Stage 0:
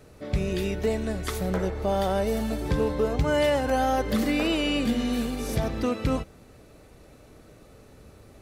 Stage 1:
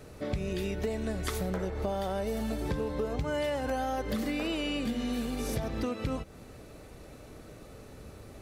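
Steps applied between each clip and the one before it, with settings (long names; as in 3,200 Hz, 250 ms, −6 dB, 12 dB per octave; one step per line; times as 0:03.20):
downward compressor 6 to 1, threshold −32 dBFS, peak gain reduction 12.5 dB
level +2.5 dB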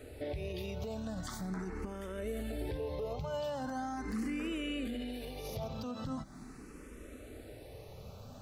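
parametric band 250 Hz +5.5 dB 0.21 octaves
brickwall limiter −29 dBFS, peak gain reduction 10.5 dB
frequency shifter mixed with the dry sound +0.41 Hz
level +1 dB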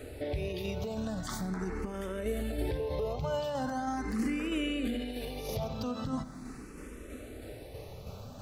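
shaped tremolo saw down 3.1 Hz, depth 35%
on a send at −15 dB: convolution reverb RT60 1.0 s, pre-delay 40 ms
on the sum: level +6 dB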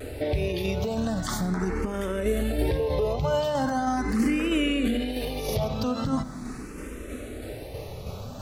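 pitch vibrato 1.2 Hz 44 cents
level +8 dB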